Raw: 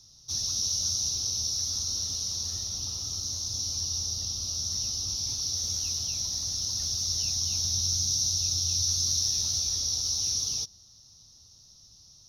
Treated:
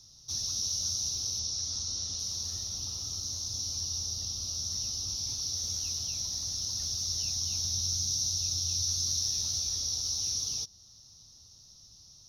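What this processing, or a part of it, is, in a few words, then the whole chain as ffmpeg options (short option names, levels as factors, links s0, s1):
parallel compression: -filter_complex "[0:a]asplit=2[s0][s1];[s1]acompressor=threshold=0.00891:ratio=6,volume=0.631[s2];[s0][s2]amix=inputs=2:normalize=0,asettb=1/sr,asplit=3[s3][s4][s5];[s3]atrim=end=1.394[s6];[s4]atrim=start=1.39:end=2.19,asetpts=PTS-STARTPTS,afade=t=in:d=0.004:c=qsin,afade=t=out:st=0.796:d=0.004:c=qsin,lowpass=8100[s7];[s5]atrim=start=2.186[s8];[s6][s7]acrossfade=d=0.004:c1=hsin:c2=qsin[s9];[s9][s8]acrossfade=d=0.004:c1=qsin:c2=hsin,volume=0.596"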